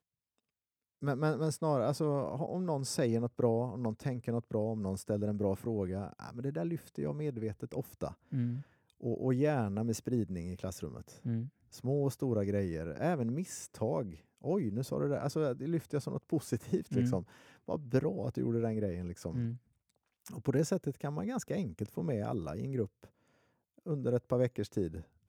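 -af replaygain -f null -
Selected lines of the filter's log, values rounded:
track_gain = +16.0 dB
track_peak = 0.111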